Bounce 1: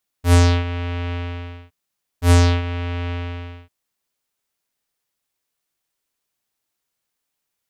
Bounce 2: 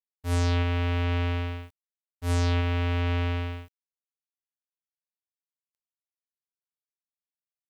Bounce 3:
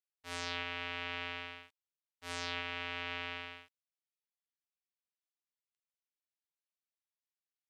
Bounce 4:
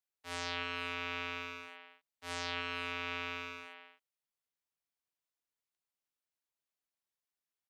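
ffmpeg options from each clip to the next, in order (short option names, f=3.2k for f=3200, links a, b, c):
-af "areverse,acompressor=threshold=-26dB:ratio=16,areverse,acrusher=bits=10:mix=0:aa=0.000001,volume=2dB"
-af "bandpass=f=2.8k:t=q:w=0.67:csg=0,volume=-2.5dB"
-filter_complex "[0:a]acrossover=split=120|1100|2000[a][b][c][d];[b]crystalizer=i=8:c=0[e];[a][e][c][d]amix=inputs=4:normalize=0,asplit=2[f][g];[g]adelay=310,highpass=300,lowpass=3.4k,asoftclip=type=hard:threshold=-33dB,volume=-7dB[h];[f][h]amix=inputs=2:normalize=0"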